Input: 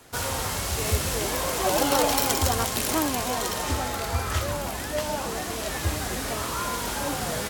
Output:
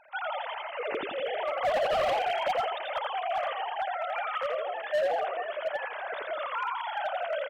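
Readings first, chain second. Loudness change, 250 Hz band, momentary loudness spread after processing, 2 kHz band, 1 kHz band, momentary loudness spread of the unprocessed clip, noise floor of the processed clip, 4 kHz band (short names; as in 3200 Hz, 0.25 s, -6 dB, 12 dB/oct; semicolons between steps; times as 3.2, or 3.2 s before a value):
-5.0 dB, -20.0 dB, 7 LU, -2.5 dB, -1.0 dB, 7 LU, -38 dBFS, -9.5 dB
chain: sine-wave speech; frequency-shifting echo 83 ms, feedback 35%, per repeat -53 Hz, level -3.5 dB; overloaded stage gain 19 dB; gain -4.5 dB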